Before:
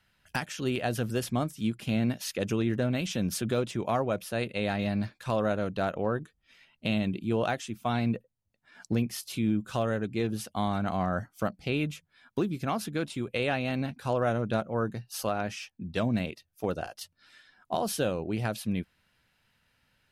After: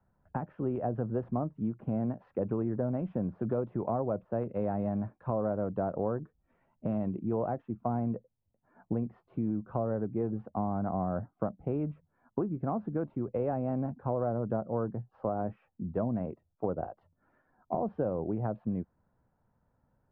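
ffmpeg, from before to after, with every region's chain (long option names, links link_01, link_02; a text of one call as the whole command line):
ffmpeg -i in.wav -filter_complex "[0:a]asettb=1/sr,asplit=3[link_01][link_02][link_03];[link_01]atrim=end=3.234[link_04];[link_02]atrim=start=3.23:end=7.64,asetpts=PTS-STARTPTS,afade=type=in:duration=0.004:curve=qsin,afade=type=out:start_time=4.406:duration=0.004:curve=qsin,highshelf=frequency=3600:gain=11,deesser=0.8[link_05];[link_03]atrim=start=7.636[link_06];[link_04][link_05]acrossfade=duration=0.004:curve1=hsin:curve2=qsin[link_07];[link_07][link_06]acrossfade=duration=0.004:curve1=qsin:curve2=hsin,lowpass=frequency=1000:width=0.5412,lowpass=frequency=1000:width=1.3066,acrossover=split=83|580[link_08][link_09][link_10];[link_08]acompressor=threshold=-55dB:ratio=4[link_11];[link_09]acompressor=threshold=-32dB:ratio=4[link_12];[link_10]acompressor=threshold=-37dB:ratio=4[link_13];[link_11][link_12][link_13]amix=inputs=3:normalize=0,volume=2dB" out.wav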